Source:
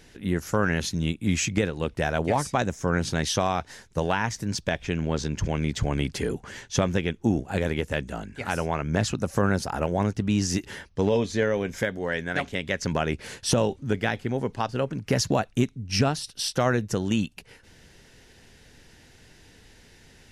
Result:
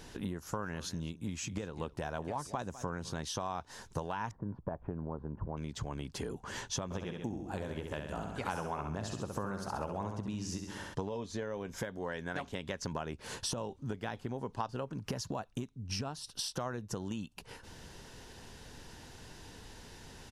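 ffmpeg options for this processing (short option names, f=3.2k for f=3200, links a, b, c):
-filter_complex "[0:a]asplit=3[a][b][c];[a]afade=t=out:st=0.57:d=0.02[d];[b]aecho=1:1:201:0.1,afade=t=in:st=0.57:d=0.02,afade=t=out:st=3.26:d=0.02[e];[c]afade=t=in:st=3.26:d=0.02[f];[d][e][f]amix=inputs=3:normalize=0,asettb=1/sr,asplit=3[g][h][i];[g]atrim=end=4.314[j];[h]atrim=start=4.31:end=5.57,asetpts=PTS-STARTPTS,afade=t=in:d=0.004:c=qsin,afade=t=out:st=1.256:d=0.004:c=qsin,lowpass=f=1.2k:w=0.5412,lowpass=f=1.2k:w=1.3066[k];[i]atrim=start=5.566[l];[j][k]acrossfade=d=0.004:c1=hsin:c2=qsin[m];[m][l]acrossfade=d=0.004:c1=qsin:c2=hsin,asplit=3[n][o][p];[n]afade=t=out:st=6.9:d=0.02[q];[o]aecho=1:1:66|132|198|264|330|396:0.501|0.251|0.125|0.0626|0.0313|0.0157,afade=t=in:st=6.9:d=0.02,afade=t=out:st=10.93:d=0.02[r];[p]afade=t=in:st=10.93:d=0.02[s];[q][r][s]amix=inputs=3:normalize=0,equalizer=f=2.1k:t=o:w=0.57:g=-6.5,acompressor=threshold=-37dB:ratio=16,equalizer=f=1k:t=o:w=0.6:g=7.5,volume=2dB"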